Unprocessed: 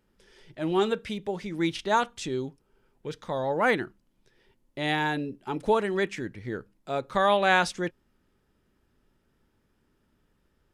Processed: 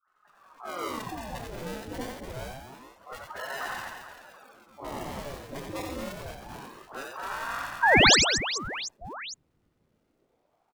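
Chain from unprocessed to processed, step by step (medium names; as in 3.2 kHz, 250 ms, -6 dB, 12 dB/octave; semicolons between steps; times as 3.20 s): coarse spectral quantiser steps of 15 dB; 0.73–1.34 s: comb 4.8 ms; 6.36–7.25 s: RIAA curve recording; compression 2.5:1, threshold -34 dBFS, peak gain reduction 11.5 dB; decimation with a swept rate 39×, swing 60% 0.29 Hz; 7.79–8.08 s: painted sound rise 290–7400 Hz -14 dBFS; phase dispersion highs, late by 76 ms, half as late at 340 Hz; on a send: reverse bouncing-ball echo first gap 90 ms, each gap 1.5×, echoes 5; on the sum: ring modulator with a swept carrier 700 Hz, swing 85%, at 0.26 Hz; trim -1 dB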